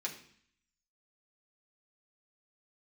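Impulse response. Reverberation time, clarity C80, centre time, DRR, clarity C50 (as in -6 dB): 0.60 s, 13.0 dB, 18 ms, -3.0 dB, 9.5 dB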